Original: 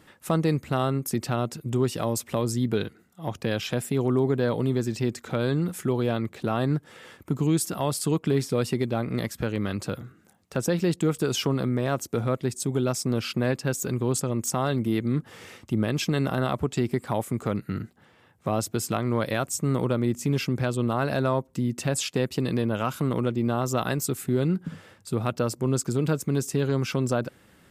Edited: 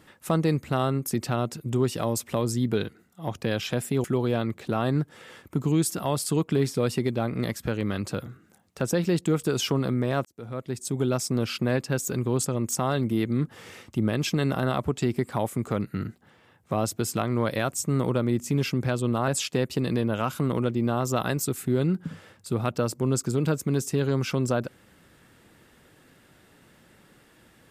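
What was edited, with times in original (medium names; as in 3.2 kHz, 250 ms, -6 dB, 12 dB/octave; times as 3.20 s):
4.04–5.79 s: delete
12.00–12.78 s: fade in
21.03–21.89 s: delete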